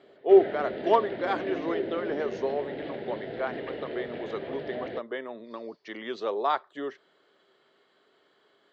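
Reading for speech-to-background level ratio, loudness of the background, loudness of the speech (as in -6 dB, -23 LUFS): 7.0 dB, -36.0 LUFS, -29.0 LUFS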